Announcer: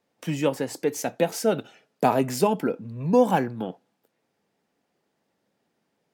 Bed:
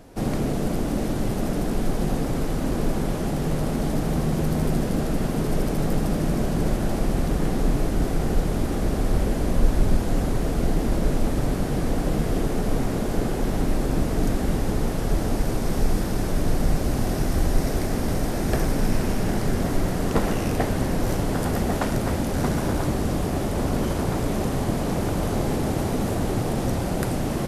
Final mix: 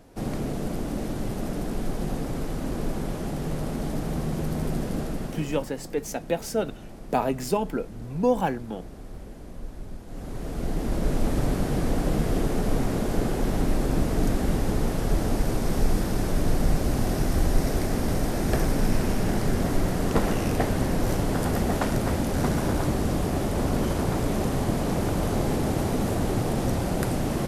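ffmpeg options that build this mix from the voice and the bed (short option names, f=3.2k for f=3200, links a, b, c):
-filter_complex "[0:a]adelay=5100,volume=-3.5dB[a];[1:a]volume=12.5dB,afade=t=out:st=4.99:d=0.74:silence=0.211349,afade=t=in:st=10.06:d=1.29:silence=0.133352[b];[a][b]amix=inputs=2:normalize=0"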